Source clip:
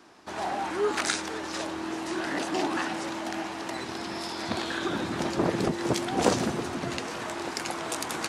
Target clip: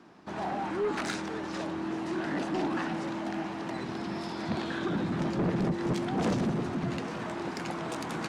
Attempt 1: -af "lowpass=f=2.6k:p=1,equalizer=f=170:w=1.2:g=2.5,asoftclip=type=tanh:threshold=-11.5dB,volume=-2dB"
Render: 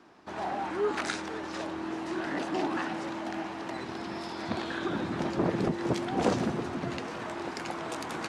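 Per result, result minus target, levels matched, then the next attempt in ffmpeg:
soft clip: distortion -13 dB; 125 Hz band -3.5 dB
-af "lowpass=f=2.6k:p=1,equalizer=f=170:w=1.2:g=2.5,asoftclip=type=tanh:threshold=-21.5dB,volume=-2dB"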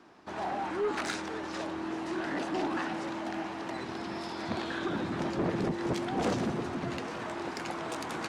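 125 Hz band -3.5 dB
-af "lowpass=f=2.6k:p=1,equalizer=f=170:w=1.2:g=10.5,asoftclip=type=tanh:threshold=-21.5dB,volume=-2dB"

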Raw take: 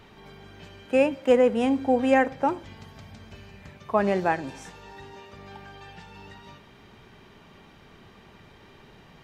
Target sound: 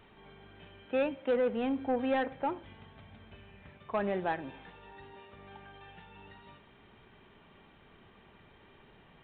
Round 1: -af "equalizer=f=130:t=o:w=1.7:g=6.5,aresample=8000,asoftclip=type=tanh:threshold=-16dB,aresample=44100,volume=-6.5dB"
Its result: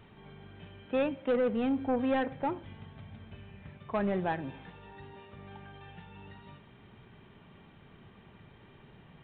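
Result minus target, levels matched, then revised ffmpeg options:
125 Hz band +5.5 dB
-af "equalizer=f=130:t=o:w=1.7:g=-2.5,aresample=8000,asoftclip=type=tanh:threshold=-16dB,aresample=44100,volume=-6.5dB"

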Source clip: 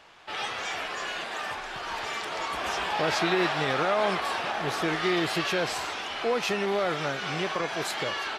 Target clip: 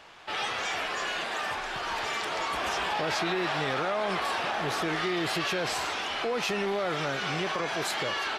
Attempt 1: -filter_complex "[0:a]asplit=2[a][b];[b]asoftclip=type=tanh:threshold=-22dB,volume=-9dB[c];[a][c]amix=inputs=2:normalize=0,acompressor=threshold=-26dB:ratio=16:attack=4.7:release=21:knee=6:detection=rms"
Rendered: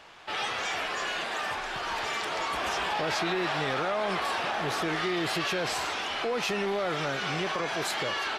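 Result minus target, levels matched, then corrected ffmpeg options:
soft clip: distortion +18 dB
-filter_complex "[0:a]asplit=2[a][b];[b]asoftclip=type=tanh:threshold=-10.5dB,volume=-9dB[c];[a][c]amix=inputs=2:normalize=0,acompressor=threshold=-26dB:ratio=16:attack=4.7:release=21:knee=6:detection=rms"

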